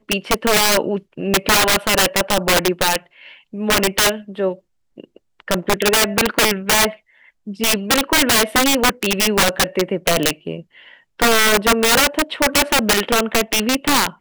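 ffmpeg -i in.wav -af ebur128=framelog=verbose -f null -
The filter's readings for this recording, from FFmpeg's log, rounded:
Integrated loudness:
  I:         -16.1 LUFS
  Threshold: -26.8 LUFS
Loudness range:
  LRA:         3.4 LU
  Threshold: -37.0 LUFS
  LRA low:   -19.2 LUFS
  LRA high:  -15.8 LUFS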